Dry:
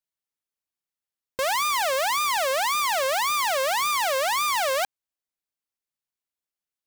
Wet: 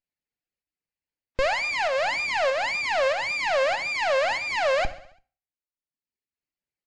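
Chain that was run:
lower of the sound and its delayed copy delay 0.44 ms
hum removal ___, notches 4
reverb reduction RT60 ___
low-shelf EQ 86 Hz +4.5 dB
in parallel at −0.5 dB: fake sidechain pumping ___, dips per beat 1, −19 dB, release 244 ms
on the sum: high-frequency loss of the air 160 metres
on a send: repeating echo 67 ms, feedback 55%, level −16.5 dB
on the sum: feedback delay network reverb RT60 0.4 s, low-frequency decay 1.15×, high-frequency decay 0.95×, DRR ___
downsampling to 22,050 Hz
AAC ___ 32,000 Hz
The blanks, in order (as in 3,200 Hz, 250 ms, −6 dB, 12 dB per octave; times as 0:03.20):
333.6 Hz, 1.1 s, 96 BPM, 12.5 dB, 64 kbit/s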